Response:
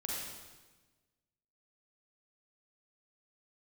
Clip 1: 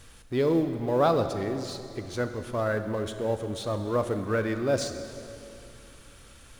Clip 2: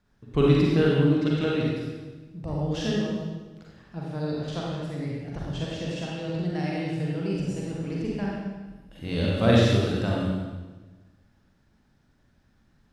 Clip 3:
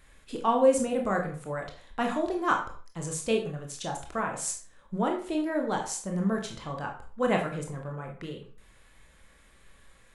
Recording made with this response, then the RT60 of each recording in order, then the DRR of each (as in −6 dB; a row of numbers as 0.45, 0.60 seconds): 2; 2.8, 1.3, 0.45 seconds; 8.0, −4.5, 1.5 decibels